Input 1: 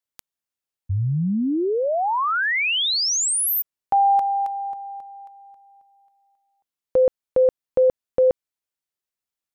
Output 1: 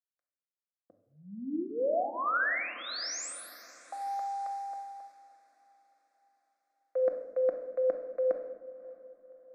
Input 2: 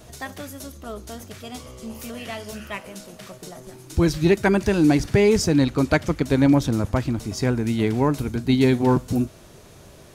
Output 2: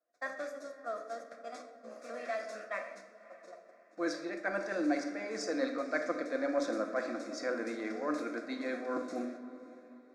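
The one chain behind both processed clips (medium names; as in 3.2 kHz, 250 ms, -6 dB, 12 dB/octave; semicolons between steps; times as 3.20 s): gate -36 dBFS, range -32 dB; high-pass 390 Hz 24 dB/octave; treble shelf 11 kHz -8.5 dB; reverse; compression 10:1, threshold -27 dBFS; reverse; distance through air 110 m; static phaser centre 600 Hz, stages 8; on a send: echo that smears into a reverb 582 ms, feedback 45%, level -16 dB; on the sum: simulated room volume 660 m³, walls mixed, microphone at 0.85 m; tape noise reduction on one side only decoder only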